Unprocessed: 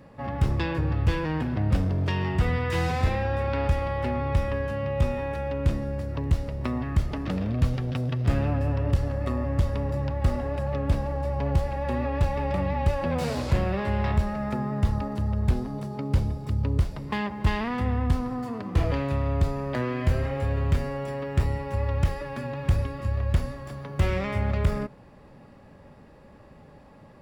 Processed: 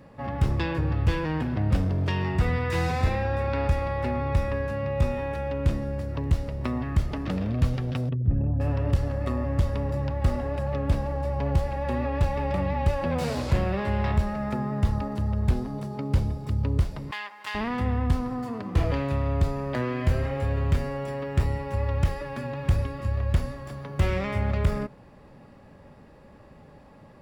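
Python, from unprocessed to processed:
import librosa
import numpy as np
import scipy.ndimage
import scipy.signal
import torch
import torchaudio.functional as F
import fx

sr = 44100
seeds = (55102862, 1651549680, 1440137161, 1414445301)

y = fx.notch(x, sr, hz=3100.0, q=11.0, at=(2.21, 5.12))
y = fx.envelope_sharpen(y, sr, power=2.0, at=(8.09, 8.6))
y = fx.highpass(y, sr, hz=1200.0, slope=12, at=(17.11, 17.55))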